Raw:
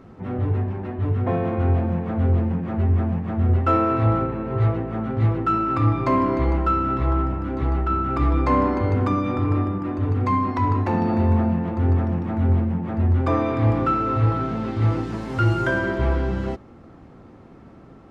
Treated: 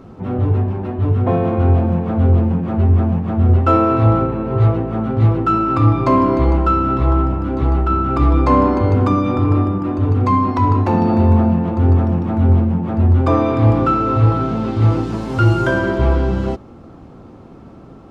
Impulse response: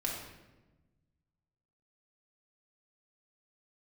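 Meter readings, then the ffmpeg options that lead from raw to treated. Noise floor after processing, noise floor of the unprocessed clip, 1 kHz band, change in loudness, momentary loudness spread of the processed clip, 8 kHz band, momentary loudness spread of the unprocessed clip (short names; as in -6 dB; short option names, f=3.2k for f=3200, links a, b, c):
-39 dBFS, -46 dBFS, +5.5 dB, +6.0 dB, 6 LU, n/a, 6 LU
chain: -af "equalizer=f=1.9k:w=2.4:g=-7,volume=6.5dB"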